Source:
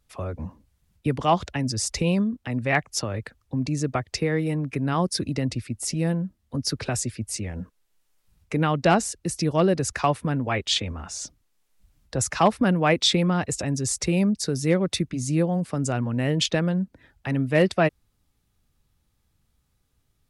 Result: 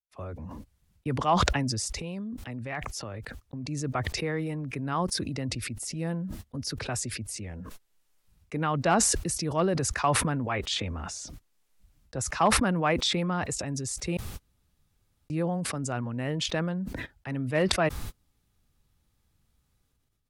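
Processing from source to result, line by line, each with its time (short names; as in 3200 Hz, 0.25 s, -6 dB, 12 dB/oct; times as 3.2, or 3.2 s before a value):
1.84–3.68 compressor 4:1, threshold -25 dBFS
14.17–15.3 room tone
whole clip: gate -47 dBFS, range -33 dB; dynamic EQ 1100 Hz, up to +6 dB, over -37 dBFS, Q 1.1; sustainer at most 23 dB/s; gain -8 dB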